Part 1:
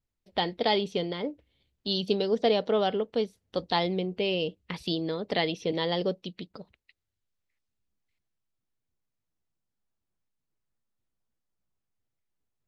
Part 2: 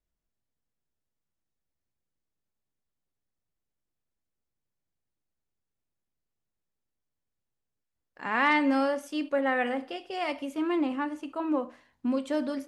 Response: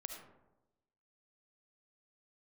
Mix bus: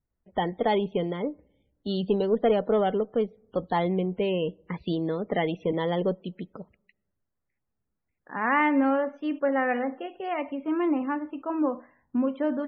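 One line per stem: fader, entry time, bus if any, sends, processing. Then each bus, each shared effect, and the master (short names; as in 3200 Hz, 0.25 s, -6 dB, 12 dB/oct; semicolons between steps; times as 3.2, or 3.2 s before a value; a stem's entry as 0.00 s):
+2.5 dB, 0.00 s, send -23.5 dB, one diode to ground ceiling -12.5 dBFS
+2.0 dB, 0.10 s, no send, dry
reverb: on, RT60 1.0 s, pre-delay 30 ms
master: LPF 2000 Hz 12 dB/oct; bell 180 Hz +2 dB; loudest bins only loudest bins 64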